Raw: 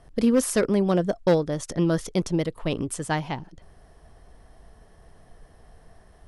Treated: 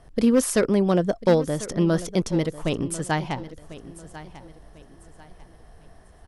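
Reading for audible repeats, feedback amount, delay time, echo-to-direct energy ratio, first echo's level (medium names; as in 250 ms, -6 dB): 2, 32%, 1045 ms, -15.5 dB, -16.0 dB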